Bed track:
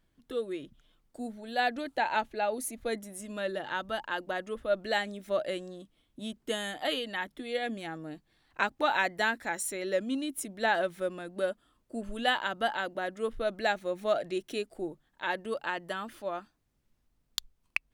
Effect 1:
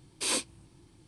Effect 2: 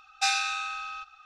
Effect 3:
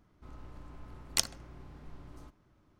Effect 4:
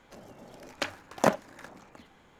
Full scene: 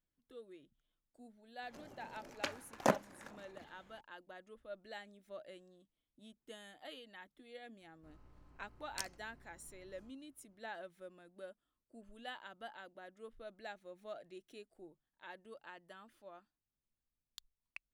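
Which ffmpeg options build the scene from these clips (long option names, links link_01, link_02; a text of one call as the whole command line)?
ffmpeg -i bed.wav -i cue0.wav -i cue1.wav -i cue2.wav -i cue3.wav -filter_complex "[0:a]volume=-19.5dB[link_01];[3:a]bandreject=frequency=3500:width=7.7[link_02];[4:a]atrim=end=2.39,asetpts=PTS-STARTPTS,volume=-7dB,afade=type=in:duration=0.004:curve=hsin,afade=type=out:start_time=2.386:duration=0.004:curve=hsin,adelay=1620[link_03];[link_02]atrim=end=2.79,asetpts=PTS-STARTPTS,volume=-14dB,afade=type=in:duration=0.004:curve=hsin,afade=type=out:start_time=2.786:duration=0.004:curve=hsin,adelay=7810[link_04];[link_01][link_03][link_04]amix=inputs=3:normalize=0" out.wav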